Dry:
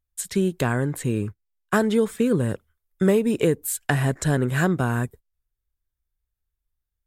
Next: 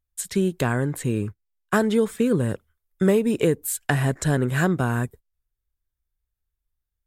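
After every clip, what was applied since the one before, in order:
no processing that can be heard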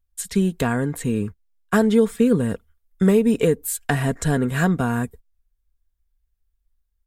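low-shelf EQ 91 Hz +9.5 dB
comb filter 4.3 ms, depth 47%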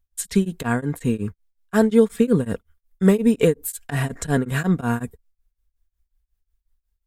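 tremolo along a rectified sine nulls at 5.5 Hz
level +2.5 dB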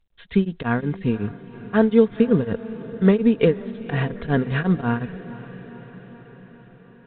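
feedback delay with all-pass diffusion 503 ms, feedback 63%, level −16 dB
mu-law 64 kbit/s 8,000 Hz

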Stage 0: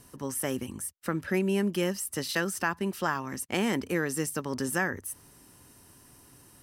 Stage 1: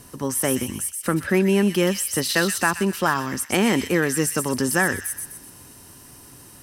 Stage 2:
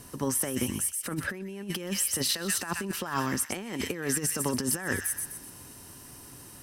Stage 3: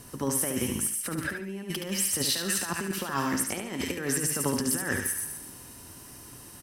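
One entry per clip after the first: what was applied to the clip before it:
harmonic generator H 5 −29 dB, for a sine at −13 dBFS; delay with a high-pass on its return 126 ms, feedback 42%, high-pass 2,700 Hz, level −4 dB; level +7.5 dB
compressor whose output falls as the input rises −24 dBFS, ratio −0.5; level −5.5 dB
repeating echo 72 ms, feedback 30%, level −6 dB

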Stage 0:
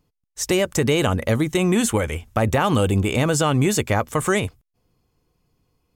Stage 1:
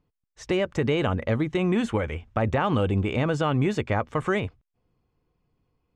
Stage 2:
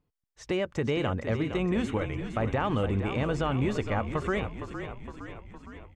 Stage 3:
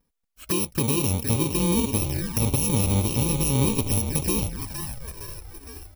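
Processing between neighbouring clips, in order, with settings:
low-pass filter 2,900 Hz 12 dB per octave; level −4.5 dB
echo with shifted repeats 462 ms, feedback 61%, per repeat −44 Hz, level −9 dB; level −4.5 dB
samples in bit-reversed order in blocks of 64 samples; flanger swept by the level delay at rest 4.3 ms, full sweep at −26.5 dBFS; level +7.5 dB

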